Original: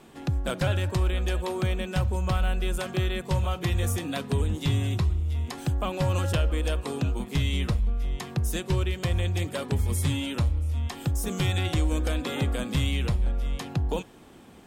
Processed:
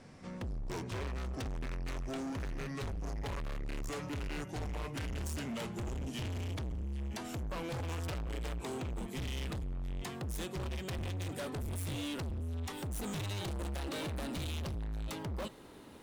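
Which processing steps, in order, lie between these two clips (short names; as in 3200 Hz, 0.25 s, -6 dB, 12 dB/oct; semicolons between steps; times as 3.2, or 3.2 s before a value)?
speed glide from 65% -> 118%; hard clip -33.5 dBFS, distortion -5 dB; gain -3 dB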